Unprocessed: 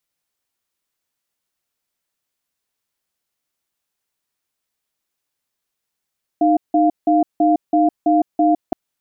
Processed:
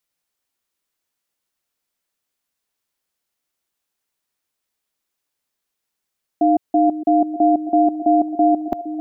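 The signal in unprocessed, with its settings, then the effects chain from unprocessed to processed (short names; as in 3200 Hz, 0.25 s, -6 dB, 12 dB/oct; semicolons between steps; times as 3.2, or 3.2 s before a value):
cadence 308 Hz, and 698 Hz, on 0.16 s, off 0.17 s, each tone -14 dBFS 2.32 s
bell 120 Hz -4 dB 0.62 oct; on a send: delay with a stepping band-pass 0.462 s, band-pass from 340 Hz, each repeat 0.7 oct, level -9.5 dB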